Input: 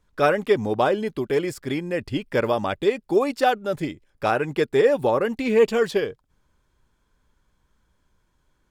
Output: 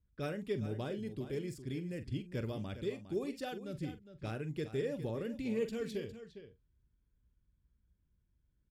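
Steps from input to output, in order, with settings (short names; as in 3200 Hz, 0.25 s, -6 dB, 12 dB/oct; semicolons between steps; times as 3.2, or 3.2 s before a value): HPF 50 Hz; passive tone stack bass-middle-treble 10-0-1; doubler 45 ms -12 dB; echo 0.408 s -12 dB; low-pass opened by the level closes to 2400 Hz, open at -43 dBFS; gain +5.5 dB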